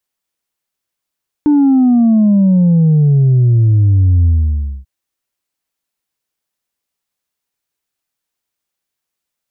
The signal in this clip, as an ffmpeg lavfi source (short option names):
-f lavfi -i "aevalsrc='0.447*clip((3.39-t)/0.59,0,1)*tanh(1.19*sin(2*PI*300*3.39/log(65/300)*(exp(log(65/300)*t/3.39)-1)))/tanh(1.19)':d=3.39:s=44100"